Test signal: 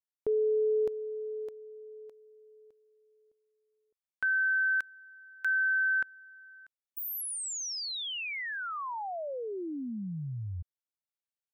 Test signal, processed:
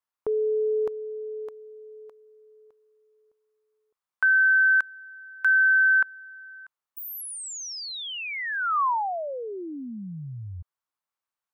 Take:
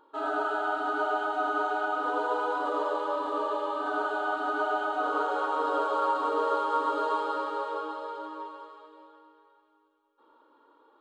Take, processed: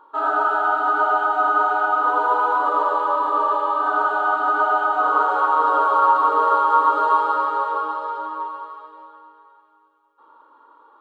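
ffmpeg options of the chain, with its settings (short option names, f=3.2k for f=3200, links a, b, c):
-af "equalizer=f=1.1k:w=1.1:g=14"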